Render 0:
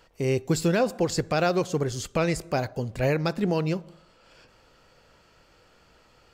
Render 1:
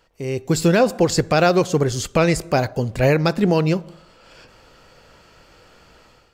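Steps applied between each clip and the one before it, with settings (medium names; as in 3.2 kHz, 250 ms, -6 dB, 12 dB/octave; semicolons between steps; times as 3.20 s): level rider gain up to 11 dB; trim -2.5 dB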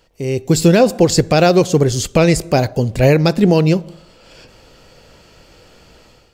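peaking EQ 1.3 kHz -7 dB 1.4 oct; trim +6 dB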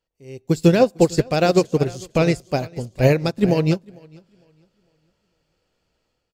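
on a send: feedback delay 452 ms, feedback 36%, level -11 dB; on the sum: upward expansion 2.5:1, over -23 dBFS; trim -1.5 dB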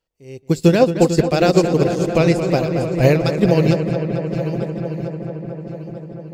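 backward echo that repeats 672 ms, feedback 43%, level -13 dB; filtered feedback delay 223 ms, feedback 85%, low-pass 4.1 kHz, level -10 dB; trim +1.5 dB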